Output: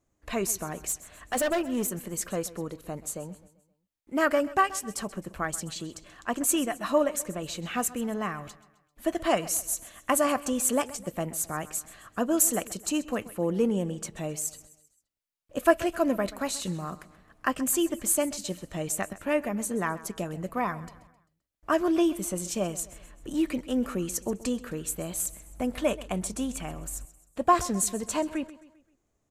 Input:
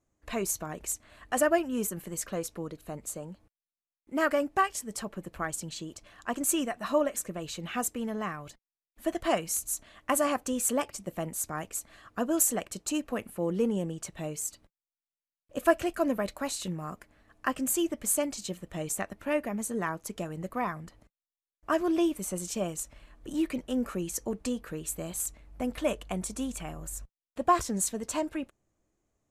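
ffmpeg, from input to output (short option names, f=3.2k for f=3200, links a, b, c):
-filter_complex "[0:a]asettb=1/sr,asplit=3[a][b][c];[a]atrim=end=0.664[d];[b]atrim=start=0.66:end=2.06,asetpts=PTS-STARTPTS,afade=t=in:d=0.004:c=qsin,afade=t=out:st=1.396:d=0.004:c=qsin,volume=25.5dB,asoftclip=hard,volume=-25.5dB[e];[c]atrim=start=2.056[f];[d][e]acrossfade=d=0.004:c1=hsin:c2=qsin[g];[g][f]acrossfade=d=0.004:c1=qsin:c2=hsin,aecho=1:1:131|262|393|524:0.126|0.0579|0.0266|0.0123,volume=2.5dB"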